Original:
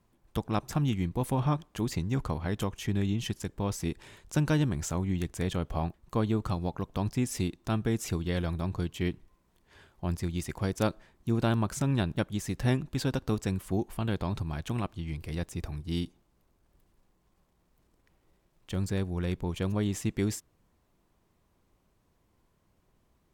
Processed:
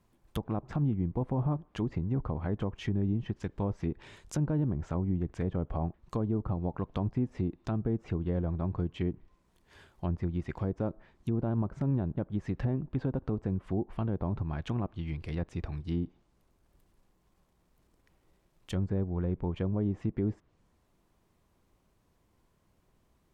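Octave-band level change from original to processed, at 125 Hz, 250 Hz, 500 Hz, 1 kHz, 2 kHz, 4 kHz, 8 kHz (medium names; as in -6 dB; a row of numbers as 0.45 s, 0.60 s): -1.0 dB, -1.5 dB, -2.0 dB, -5.5 dB, -9.5 dB, -11.5 dB, under -15 dB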